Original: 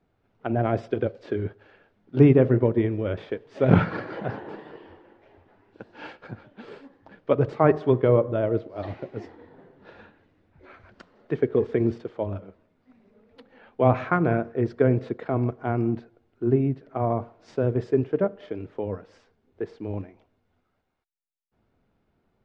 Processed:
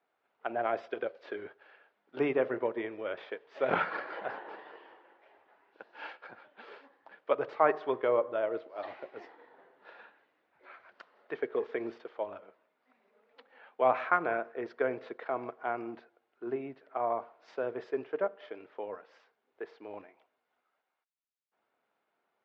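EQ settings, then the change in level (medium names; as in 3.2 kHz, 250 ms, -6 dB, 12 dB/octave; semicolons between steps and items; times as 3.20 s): high-pass 730 Hz 12 dB/octave; distance through air 170 m; 0.0 dB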